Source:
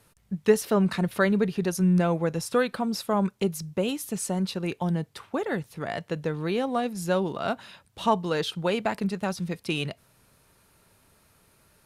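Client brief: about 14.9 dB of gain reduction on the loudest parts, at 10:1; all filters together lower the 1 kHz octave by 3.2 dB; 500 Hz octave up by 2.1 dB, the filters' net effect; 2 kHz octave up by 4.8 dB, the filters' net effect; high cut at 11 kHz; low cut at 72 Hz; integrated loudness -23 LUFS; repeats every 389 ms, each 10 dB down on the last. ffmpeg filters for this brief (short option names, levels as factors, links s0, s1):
-af "highpass=72,lowpass=11000,equalizer=f=500:t=o:g=4,equalizer=f=1000:t=o:g=-8.5,equalizer=f=2000:t=o:g=9,acompressor=threshold=0.0501:ratio=10,aecho=1:1:389|778|1167|1556:0.316|0.101|0.0324|0.0104,volume=2.66"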